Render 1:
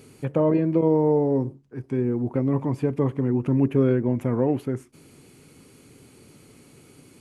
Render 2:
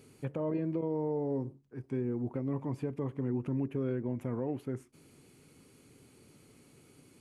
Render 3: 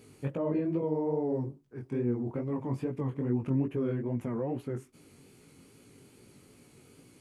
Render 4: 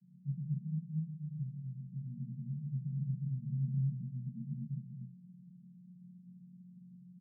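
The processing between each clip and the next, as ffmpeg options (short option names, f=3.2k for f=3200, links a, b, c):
-af "alimiter=limit=-15.5dB:level=0:latency=1:release=297,volume=-8.5dB"
-af "flanger=delay=16.5:depth=6.3:speed=2.4,volume=5.5dB"
-filter_complex "[0:a]aeval=exprs='val(0)+0.00355*(sin(2*PI*60*n/s)+sin(2*PI*2*60*n/s)/2+sin(2*PI*3*60*n/s)/3+sin(2*PI*4*60*n/s)/4+sin(2*PI*5*60*n/s)/5)':c=same,asuperpass=centerf=170:order=20:qfactor=1.8,asplit=2[a][b];[b]aecho=0:1:128.3|239.1:0.501|0.891[c];[a][c]amix=inputs=2:normalize=0,volume=-1.5dB"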